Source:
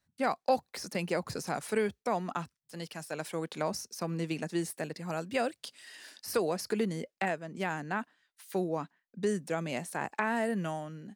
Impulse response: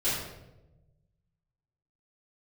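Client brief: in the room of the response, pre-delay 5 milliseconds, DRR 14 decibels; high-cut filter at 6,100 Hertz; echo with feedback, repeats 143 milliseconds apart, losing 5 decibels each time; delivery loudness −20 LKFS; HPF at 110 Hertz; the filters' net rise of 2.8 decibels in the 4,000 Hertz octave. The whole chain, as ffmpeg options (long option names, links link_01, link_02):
-filter_complex "[0:a]highpass=110,lowpass=6100,equalizer=frequency=4000:width_type=o:gain=5,aecho=1:1:143|286|429|572|715|858|1001:0.562|0.315|0.176|0.0988|0.0553|0.031|0.0173,asplit=2[link_01][link_02];[1:a]atrim=start_sample=2205,adelay=5[link_03];[link_02][link_03]afir=irnorm=-1:irlink=0,volume=-23.5dB[link_04];[link_01][link_04]amix=inputs=2:normalize=0,volume=12.5dB"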